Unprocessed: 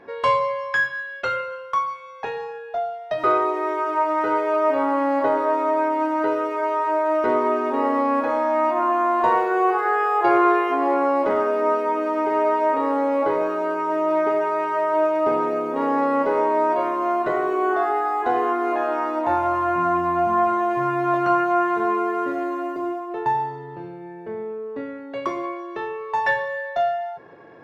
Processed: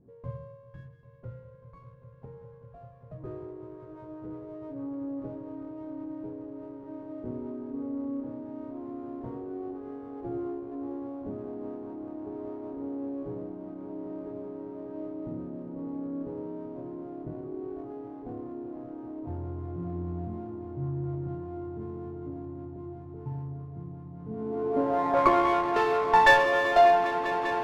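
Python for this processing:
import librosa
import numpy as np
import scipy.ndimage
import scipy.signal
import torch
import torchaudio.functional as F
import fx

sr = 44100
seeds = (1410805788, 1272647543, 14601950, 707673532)

y = fx.echo_swell(x, sr, ms=198, loudest=8, wet_db=-17.0)
y = fx.filter_sweep_lowpass(y, sr, from_hz=130.0, to_hz=4600.0, start_s=24.17, end_s=25.83, q=1.3)
y = fx.running_max(y, sr, window=5)
y = y * 10.0 ** (2.5 / 20.0)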